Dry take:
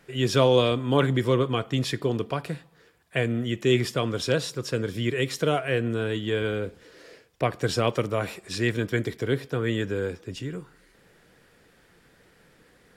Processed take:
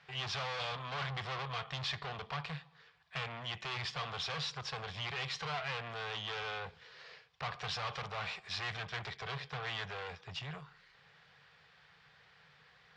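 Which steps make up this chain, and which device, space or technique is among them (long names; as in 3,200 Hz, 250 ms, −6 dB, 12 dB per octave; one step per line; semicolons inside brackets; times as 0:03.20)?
scooped metal amplifier (tube saturation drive 35 dB, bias 0.7; loudspeaker in its box 84–4,500 Hz, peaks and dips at 150 Hz +10 dB, 430 Hz +4 dB, 780 Hz +7 dB, 1,100 Hz +6 dB; guitar amp tone stack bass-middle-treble 10-0-10)
level +6.5 dB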